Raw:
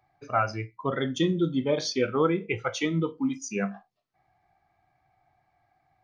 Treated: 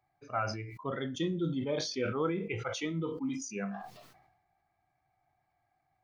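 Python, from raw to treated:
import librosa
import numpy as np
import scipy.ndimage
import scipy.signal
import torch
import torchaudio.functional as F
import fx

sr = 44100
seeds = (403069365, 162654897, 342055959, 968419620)

y = fx.sustainer(x, sr, db_per_s=54.0)
y = y * 10.0 ** (-8.5 / 20.0)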